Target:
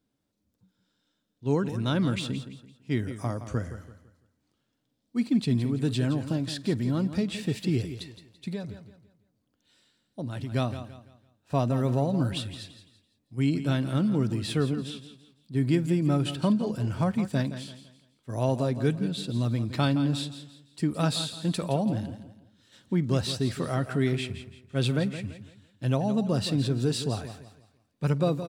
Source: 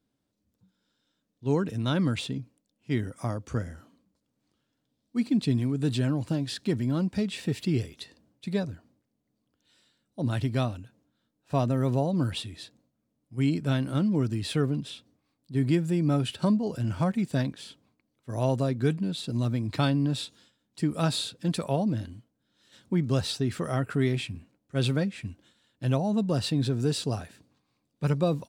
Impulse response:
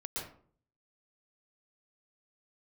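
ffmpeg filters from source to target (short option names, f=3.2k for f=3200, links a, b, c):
-filter_complex "[0:a]asettb=1/sr,asplit=3[a][b][c];[a]atrim=end=8.514[d];[b]atrim=start=8.51:end=10.52,asetpts=PTS-STARTPTS,afade=t=in:d=0.004:c=qsin,afade=t=out:st=2.006:d=0.004:c=qsin,acompressor=threshold=-32dB:ratio=4[e];[c]atrim=start=10.516[f];[d][e]acrossfade=d=0.004:c1=hsin:c2=qsin[g];[g][f]acrossfade=d=0.004:c1=qsin:c2=hsin,aecho=1:1:168|336|504|672:0.266|0.0905|0.0308|0.0105,asplit=2[h][i];[1:a]atrim=start_sample=2205,atrim=end_sample=3969,adelay=50[j];[i][j]afir=irnorm=-1:irlink=0,volume=-19dB[k];[h][k]amix=inputs=2:normalize=0"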